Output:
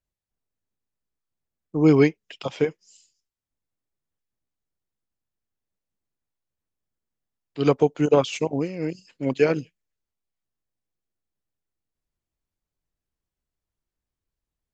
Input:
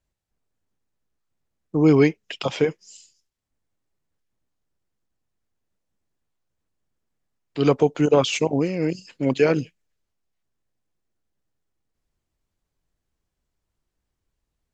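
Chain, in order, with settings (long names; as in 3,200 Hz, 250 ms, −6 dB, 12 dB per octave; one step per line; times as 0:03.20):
expander for the loud parts 1.5 to 1, over −29 dBFS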